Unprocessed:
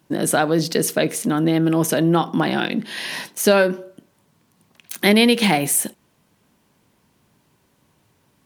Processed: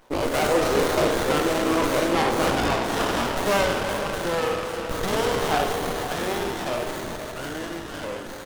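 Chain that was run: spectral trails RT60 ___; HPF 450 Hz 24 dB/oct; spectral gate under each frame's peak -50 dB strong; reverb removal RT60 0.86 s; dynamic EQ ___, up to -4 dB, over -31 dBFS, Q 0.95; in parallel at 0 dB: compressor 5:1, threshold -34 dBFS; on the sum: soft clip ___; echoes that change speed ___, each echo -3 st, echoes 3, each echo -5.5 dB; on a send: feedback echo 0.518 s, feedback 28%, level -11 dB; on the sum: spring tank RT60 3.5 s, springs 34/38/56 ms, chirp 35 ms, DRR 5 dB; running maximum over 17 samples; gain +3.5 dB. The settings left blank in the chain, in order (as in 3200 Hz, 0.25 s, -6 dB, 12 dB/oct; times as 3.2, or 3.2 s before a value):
1.08 s, 690 Hz, -19 dBFS, 0.122 s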